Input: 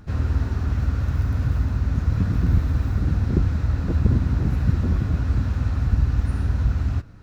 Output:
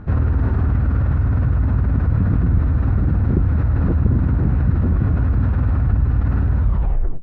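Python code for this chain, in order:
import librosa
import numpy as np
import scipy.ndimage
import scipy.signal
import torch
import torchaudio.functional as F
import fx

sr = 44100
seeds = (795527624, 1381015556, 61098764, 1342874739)

p1 = fx.tape_stop_end(x, sr, length_s=0.63)
p2 = scipy.signal.sosfilt(scipy.signal.butter(2, 1600.0, 'lowpass', fs=sr, output='sos'), p1)
p3 = fx.over_compress(p2, sr, threshold_db=-25.0, ratio=-1.0)
y = p2 + F.gain(torch.from_numpy(p3), 1.5).numpy()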